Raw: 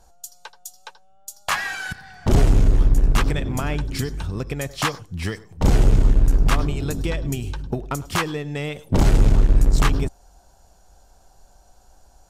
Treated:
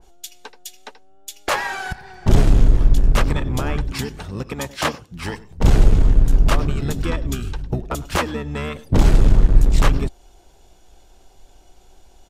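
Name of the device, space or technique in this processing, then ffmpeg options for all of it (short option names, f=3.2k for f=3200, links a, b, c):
octave pedal: -filter_complex "[0:a]asplit=2[a][b];[b]asetrate=22050,aresample=44100,atempo=2,volume=-1dB[c];[a][c]amix=inputs=2:normalize=0,asettb=1/sr,asplit=3[d][e][f];[d]atrim=end=3.914[g];[e]atrim=start=3.91:end=5.33,asetpts=PTS-STARTPTS,afade=t=in:d=0.004:c=qsin,afade=t=out:st=1.416:d=0.004:c=qsin,highpass=f=150:p=1[h];[f]atrim=start=5.326[i];[g][h]acrossfade=d=0.004:c1=hsin:c2=qsin[j];[j][i]acrossfade=d=0.004:c1=qsin:c2=hsin,adynamicequalizer=threshold=0.0158:dfrequency=2300:dqfactor=0.7:tfrequency=2300:tqfactor=0.7:attack=5:release=100:ratio=0.375:range=1.5:mode=cutabove:tftype=highshelf"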